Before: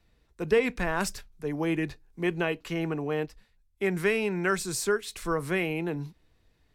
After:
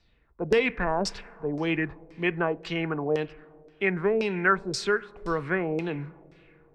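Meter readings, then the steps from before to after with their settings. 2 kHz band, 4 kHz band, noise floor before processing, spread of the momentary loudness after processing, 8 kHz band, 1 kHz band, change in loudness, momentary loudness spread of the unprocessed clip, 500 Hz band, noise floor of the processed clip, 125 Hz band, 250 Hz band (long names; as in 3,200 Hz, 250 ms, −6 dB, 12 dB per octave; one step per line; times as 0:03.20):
+3.0 dB, +2.0 dB, −68 dBFS, 10 LU, −6.0 dB, +4.0 dB, +1.5 dB, 10 LU, +1.5 dB, −62 dBFS, 0.0 dB, +0.5 dB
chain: four-comb reverb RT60 3.1 s, combs from 32 ms, DRR 19 dB
auto-filter low-pass saw down 1.9 Hz 500–5,400 Hz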